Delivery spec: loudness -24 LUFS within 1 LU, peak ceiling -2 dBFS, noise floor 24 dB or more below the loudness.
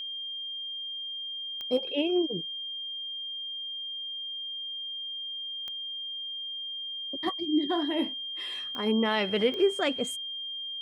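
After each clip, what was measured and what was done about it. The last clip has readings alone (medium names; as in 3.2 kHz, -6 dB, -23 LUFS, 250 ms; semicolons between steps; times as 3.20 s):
clicks found 4; steady tone 3.2 kHz; tone level -34 dBFS; loudness -31.0 LUFS; peak level -13.5 dBFS; loudness target -24.0 LUFS
-> de-click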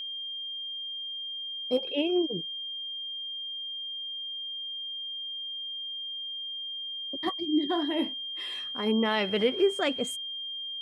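clicks found 0; steady tone 3.2 kHz; tone level -34 dBFS
-> band-stop 3.2 kHz, Q 30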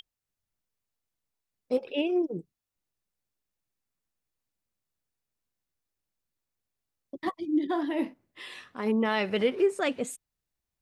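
steady tone not found; loudness -29.0 LUFS; peak level -14.0 dBFS; loudness target -24.0 LUFS
-> trim +5 dB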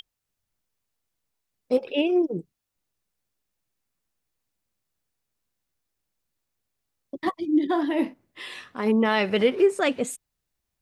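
loudness -24.0 LUFS; peak level -9.0 dBFS; noise floor -83 dBFS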